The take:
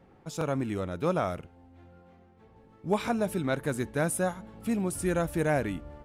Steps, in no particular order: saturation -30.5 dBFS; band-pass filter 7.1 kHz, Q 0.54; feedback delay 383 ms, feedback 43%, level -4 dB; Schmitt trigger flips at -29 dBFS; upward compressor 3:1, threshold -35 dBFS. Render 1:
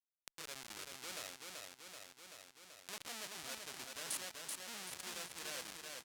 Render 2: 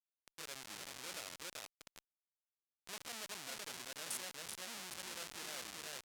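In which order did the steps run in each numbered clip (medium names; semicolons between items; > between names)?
Schmitt trigger > saturation > feedback delay > upward compressor > band-pass filter; feedback delay > Schmitt trigger > upward compressor > saturation > band-pass filter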